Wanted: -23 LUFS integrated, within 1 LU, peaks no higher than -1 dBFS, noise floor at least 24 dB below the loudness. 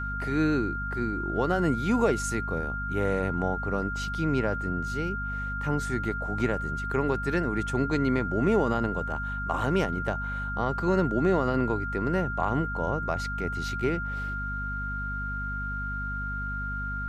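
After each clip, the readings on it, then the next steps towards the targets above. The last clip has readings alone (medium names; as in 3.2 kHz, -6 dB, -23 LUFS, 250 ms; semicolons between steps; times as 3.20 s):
hum 50 Hz; highest harmonic 250 Hz; hum level -32 dBFS; steady tone 1.4 kHz; tone level -32 dBFS; loudness -28.5 LUFS; peak level -11.5 dBFS; loudness target -23.0 LUFS
-> hum notches 50/100/150/200/250 Hz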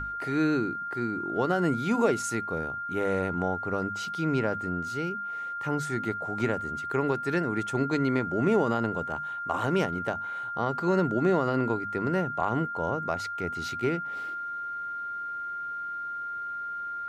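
hum not found; steady tone 1.4 kHz; tone level -32 dBFS
-> band-stop 1.4 kHz, Q 30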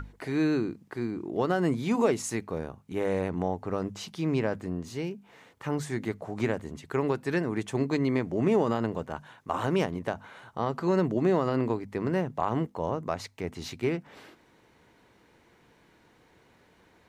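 steady tone not found; loudness -30.0 LUFS; peak level -13.0 dBFS; loudness target -23.0 LUFS
-> trim +7 dB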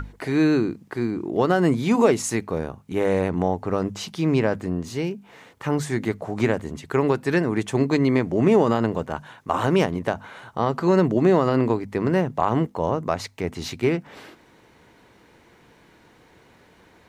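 loudness -23.0 LUFS; peak level -6.0 dBFS; noise floor -55 dBFS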